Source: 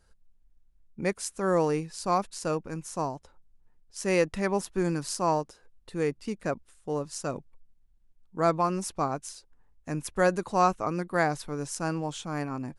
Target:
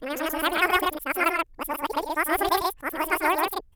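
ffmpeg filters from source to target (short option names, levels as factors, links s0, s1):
-af "areverse,equalizer=f=6300:t=o:w=1.1:g=13,atempo=1.7,highshelf=f=3600:g=-9,aecho=1:1:189.5|259.5:0.316|0.708,asetrate=88200,aresample=44100,volume=1.33"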